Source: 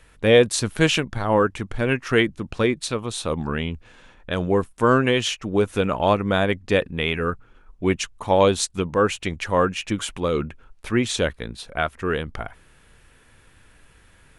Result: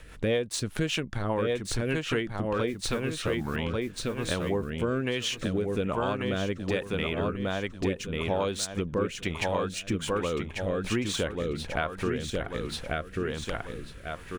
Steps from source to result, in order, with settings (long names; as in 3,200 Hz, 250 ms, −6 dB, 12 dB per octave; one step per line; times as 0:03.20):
running median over 3 samples
0:02.67–0:03.56: noise that follows the level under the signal 25 dB
repeating echo 1,141 ms, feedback 27%, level −4 dB
rotating-speaker cabinet horn 5 Hz, later 1.2 Hz, at 0:02.26
downward compressor 4 to 1, threshold −36 dBFS, peak gain reduction 21 dB
level +7.5 dB